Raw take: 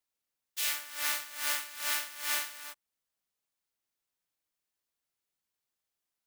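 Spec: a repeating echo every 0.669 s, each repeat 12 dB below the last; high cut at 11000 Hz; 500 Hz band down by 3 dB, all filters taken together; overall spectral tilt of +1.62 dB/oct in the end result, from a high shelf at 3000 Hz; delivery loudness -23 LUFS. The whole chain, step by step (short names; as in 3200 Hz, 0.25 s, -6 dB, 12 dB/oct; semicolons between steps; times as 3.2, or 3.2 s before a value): LPF 11000 Hz; bell 500 Hz -4 dB; high shelf 3000 Hz +7 dB; feedback echo 0.669 s, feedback 25%, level -12 dB; gain +7.5 dB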